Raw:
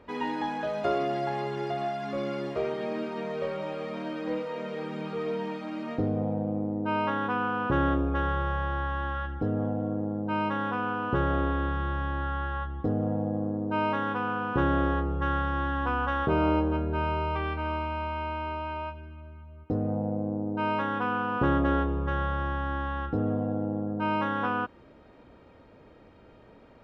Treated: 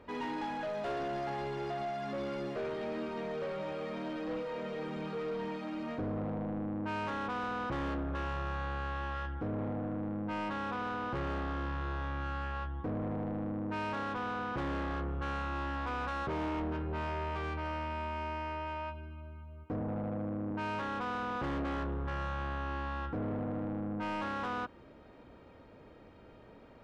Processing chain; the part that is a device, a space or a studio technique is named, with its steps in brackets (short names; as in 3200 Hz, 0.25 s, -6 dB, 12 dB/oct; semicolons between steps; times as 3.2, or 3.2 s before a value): 19.8–20.51 HPF 77 Hz 24 dB/oct; saturation between pre-emphasis and de-emphasis (high shelf 3000 Hz +11 dB; soft clip -31 dBFS, distortion -8 dB; high shelf 3000 Hz -11 dB); gain -1.5 dB